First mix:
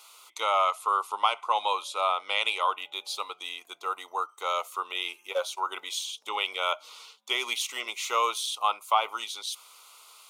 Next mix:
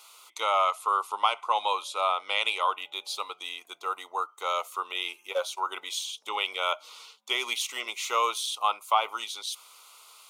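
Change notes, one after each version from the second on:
background: add high-frequency loss of the air 240 metres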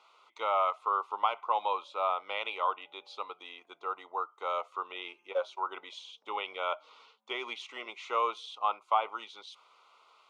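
master: add head-to-tape spacing loss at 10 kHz 35 dB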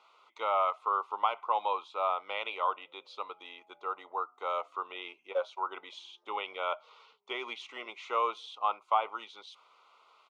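background: entry +0.90 s
master: add high-shelf EQ 5,400 Hz −5.5 dB

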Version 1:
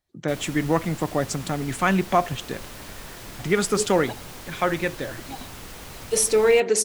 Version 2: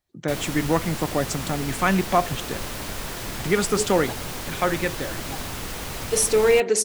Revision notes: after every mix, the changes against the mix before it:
background +7.5 dB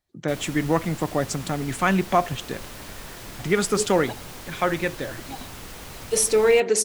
background −7.0 dB

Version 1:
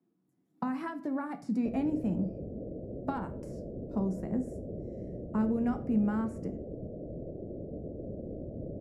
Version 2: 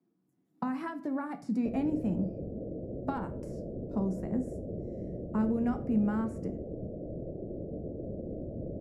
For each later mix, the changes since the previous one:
background: send +11.5 dB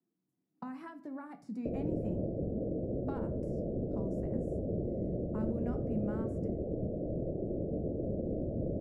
speech −9.5 dB
background +3.5 dB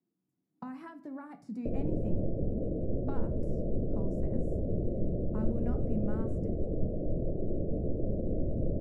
master: remove high-pass filter 120 Hz 6 dB per octave

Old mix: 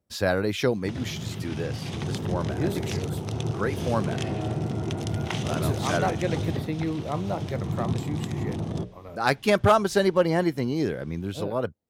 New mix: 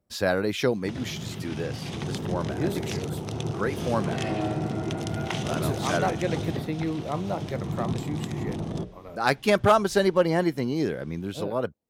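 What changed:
second sound +5.5 dB
master: add parametric band 93 Hz −5.5 dB 0.72 octaves

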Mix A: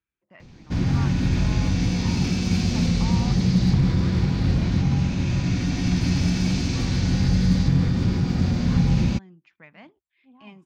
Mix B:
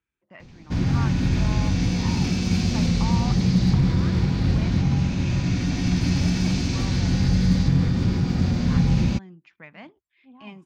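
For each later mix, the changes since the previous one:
speech +4.0 dB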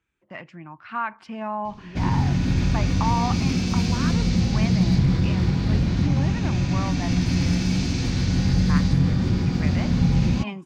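speech +8.5 dB
background: entry +1.25 s

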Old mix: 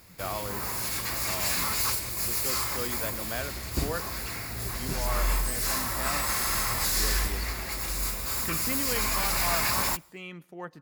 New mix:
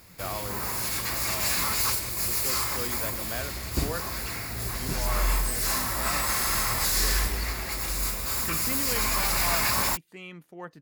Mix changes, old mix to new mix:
speech: send off
background: send +11.0 dB

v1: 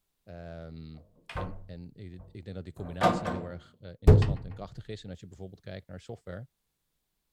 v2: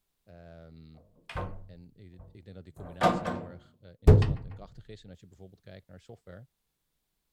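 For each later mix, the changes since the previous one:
speech −7.0 dB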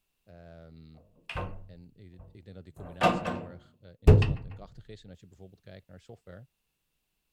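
background: add parametric band 2,700 Hz +12.5 dB 0.21 octaves

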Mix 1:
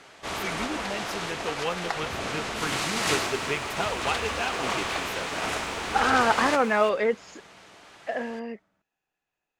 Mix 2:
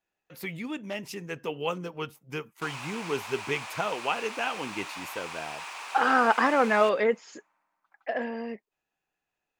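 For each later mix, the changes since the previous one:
first sound: muted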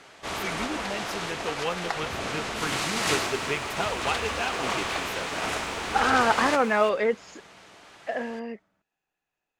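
first sound: unmuted

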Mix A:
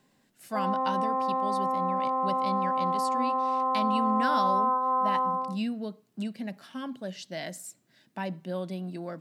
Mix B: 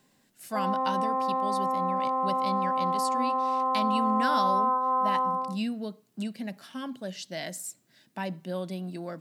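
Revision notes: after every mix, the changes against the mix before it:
master: add high-shelf EQ 4,400 Hz +6 dB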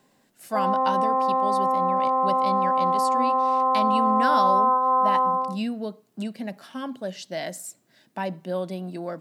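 master: add parametric band 650 Hz +6.5 dB 2.5 octaves

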